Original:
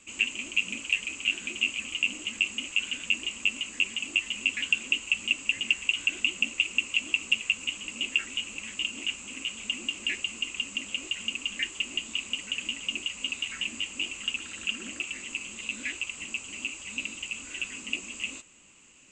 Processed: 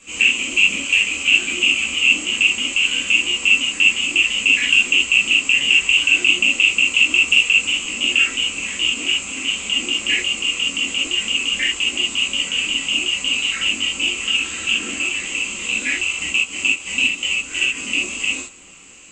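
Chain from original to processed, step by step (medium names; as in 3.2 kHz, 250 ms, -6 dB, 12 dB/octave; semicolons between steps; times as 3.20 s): 16.14–17.78 s: transient shaper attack +5 dB, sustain -9 dB; gated-style reverb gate 100 ms flat, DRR -7.5 dB; trim +5 dB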